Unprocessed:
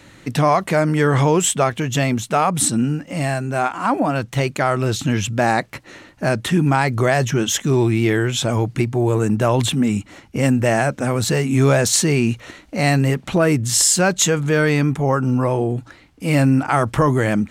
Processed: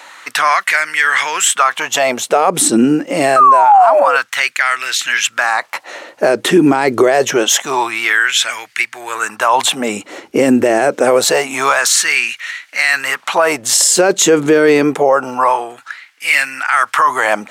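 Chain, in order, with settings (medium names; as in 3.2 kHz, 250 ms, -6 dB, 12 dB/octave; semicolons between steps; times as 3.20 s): painted sound fall, 3.36–4.17 s, 470–1300 Hz -13 dBFS; LFO high-pass sine 0.26 Hz 350–1900 Hz; loudness maximiser +10.5 dB; trim -1 dB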